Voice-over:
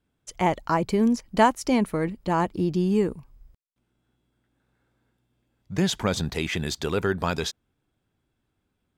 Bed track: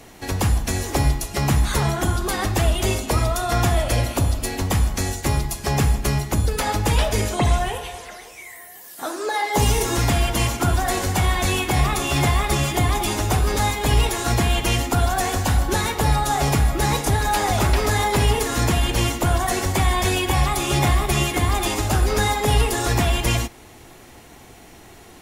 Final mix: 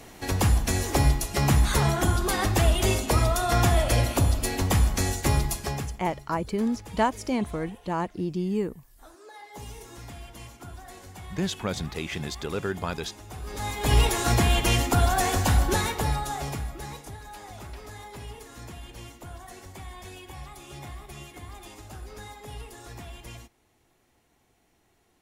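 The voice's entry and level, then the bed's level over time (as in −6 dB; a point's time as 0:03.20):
5.60 s, −5.0 dB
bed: 0:05.56 −2 dB
0:06.03 −23 dB
0:13.26 −23 dB
0:13.95 −2 dB
0:15.67 −2 dB
0:17.21 −22.5 dB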